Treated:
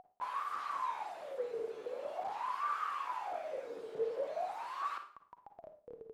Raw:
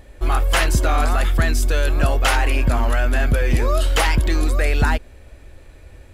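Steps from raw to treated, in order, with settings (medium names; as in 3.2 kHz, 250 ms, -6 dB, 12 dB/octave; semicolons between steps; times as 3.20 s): high-pass 70 Hz 24 dB/octave; spectral gate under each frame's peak -15 dB weak; RIAA curve recording; de-hum 294.9 Hz, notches 6; compressor with a negative ratio -29 dBFS, ratio -1; Schmitt trigger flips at -36.5 dBFS; wah-wah 0.45 Hz 440–1200 Hz, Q 21; on a send: reverberation RT60 0.40 s, pre-delay 38 ms, DRR 7 dB; on the sum: trim +9.5 dB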